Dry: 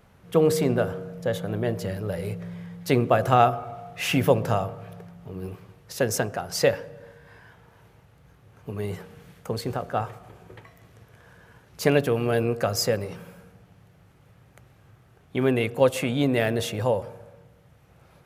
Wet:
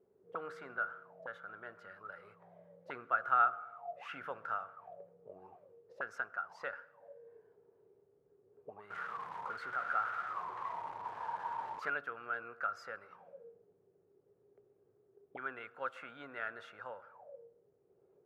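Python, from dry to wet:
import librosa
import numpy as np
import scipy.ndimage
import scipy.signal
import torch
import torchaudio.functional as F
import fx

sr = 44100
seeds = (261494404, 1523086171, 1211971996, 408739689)

y = fx.zero_step(x, sr, step_db=-23.5, at=(8.9, 11.9))
y = fx.high_shelf(y, sr, hz=5900.0, db=-5.5)
y = fx.auto_wah(y, sr, base_hz=380.0, top_hz=1400.0, q=15.0, full_db=-25.5, direction='up')
y = y * 10.0 ** (5.5 / 20.0)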